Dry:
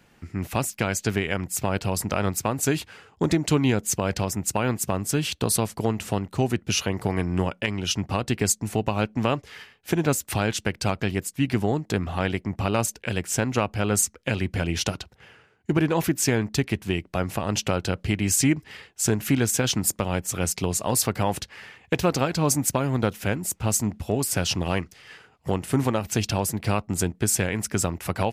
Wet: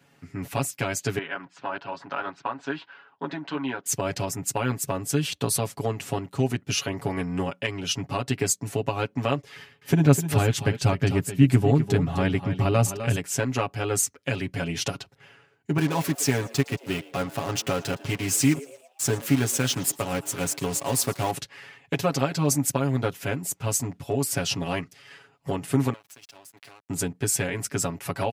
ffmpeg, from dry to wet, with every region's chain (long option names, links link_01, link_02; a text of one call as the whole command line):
ffmpeg -i in.wav -filter_complex "[0:a]asettb=1/sr,asplit=3[link_01][link_02][link_03];[link_01]atrim=end=1.184[link_04];[link_02]atrim=start=1.18:end=3.86,asetpts=PTS-STARTPTS,afade=type=in:duration=0.004:curve=qsin,afade=type=out:start_time=2.676:duration=0.004:curve=qsin,flanger=delay=0.1:depth=7.3:regen=-54:speed=1.6:shape=sinusoidal,highpass=300,equalizer=frequency=440:width_type=q:width=4:gain=-6,equalizer=frequency=980:width_type=q:width=4:gain=7,equalizer=frequency=1500:width_type=q:width=4:gain=8,equalizer=frequency=2200:width_type=q:width=4:gain=-4,lowpass=frequency=3800:width=0.5412,lowpass=frequency=3800:width=1.3066[link_05];[link_03]atrim=start=3.856[link_06];[link_04][link_05]acrossfade=duration=0.004:curve1=hsin:curve2=qsin[link_07];[link_07][link_06]acrossfade=duration=0.004:curve1=qsin:curve2=hsin,asettb=1/sr,asplit=3[link_08][link_09][link_10];[link_08]atrim=end=9.564[link_11];[link_09]atrim=start=9.56:end=13.16,asetpts=PTS-STARTPTS,afade=type=in:duration=0.004:curve=qsin,afade=type=out:start_time=3.596:duration=0.004:curve=qsin,lowshelf=frequency=240:gain=11.5,aecho=1:1:254|259:0.282|0.119,atrim=end_sample=158760[link_12];[link_10]atrim=start=13.156[link_13];[link_11][link_12]acrossfade=duration=0.004:curve1=hsin:curve2=qsin[link_14];[link_14][link_13]acrossfade=duration=0.004:curve1=qsin:curve2=hsin,asettb=1/sr,asplit=3[link_15][link_16][link_17];[link_15]atrim=end=15.784[link_18];[link_16]atrim=start=15.78:end=21.31,asetpts=PTS-STARTPTS,afade=type=in:duration=0.004:curve=qsin,afade=type=out:start_time=5.526:duration=0.004:curve=qsin,acrusher=bits=4:mix=0:aa=0.5,asplit=5[link_19][link_20][link_21][link_22][link_23];[link_20]adelay=113,afreqshift=120,volume=-20.5dB[link_24];[link_21]adelay=226,afreqshift=240,volume=-26.9dB[link_25];[link_22]adelay=339,afreqshift=360,volume=-33.3dB[link_26];[link_23]adelay=452,afreqshift=480,volume=-39.6dB[link_27];[link_19][link_24][link_25][link_26][link_27]amix=inputs=5:normalize=0,atrim=end_sample=243873[link_28];[link_17]atrim=start=21.306[link_29];[link_18][link_28]acrossfade=duration=0.004:curve1=hsin:curve2=qsin[link_30];[link_30][link_29]acrossfade=duration=0.004:curve1=qsin:curve2=hsin,asettb=1/sr,asplit=3[link_31][link_32][link_33];[link_31]atrim=end=25.934[link_34];[link_32]atrim=start=25.93:end=26.9,asetpts=PTS-STARTPTS,afade=type=in:duration=0.004:curve=qsin,afade=type=out:start_time=0.966:duration=0.004:curve=qsin,highpass=frequency=960:poles=1,acompressor=threshold=-39dB:ratio=10:attack=3.2:release=140:knee=1:detection=peak,aeval=exprs='sgn(val(0))*max(abs(val(0))-0.00376,0)':channel_layout=same[link_35];[link_33]atrim=start=26.896[link_36];[link_34][link_35]acrossfade=duration=0.004:curve1=hsin:curve2=qsin[link_37];[link_37][link_36]acrossfade=duration=0.004:curve1=qsin:curve2=hsin,highpass=88,aecho=1:1:7.2:0.94,volume=-4.5dB" out.wav